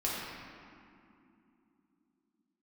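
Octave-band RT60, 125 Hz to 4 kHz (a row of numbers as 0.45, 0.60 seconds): 3.7, 4.6, 3.2, 2.6, 2.1, 1.5 seconds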